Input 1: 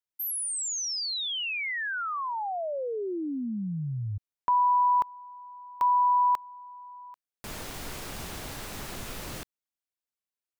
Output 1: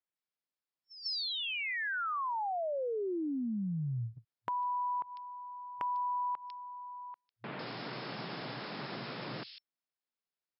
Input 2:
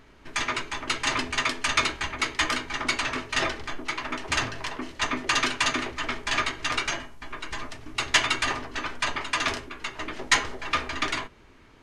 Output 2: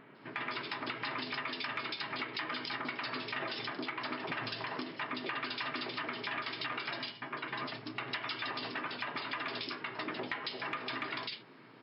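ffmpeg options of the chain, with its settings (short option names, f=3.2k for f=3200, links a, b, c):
-filter_complex "[0:a]acrossover=split=3100[a][b];[b]adelay=150[c];[a][c]amix=inputs=2:normalize=0,afftfilt=real='re*between(b*sr/4096,110,5400)':imag='im*between(b*sr/4096,110,5400)':win_size=4096:overlap=0.75,acompressor=threshold=-32dB:ratio=12:attack=2.4:release=251:knee=1:detection=peak"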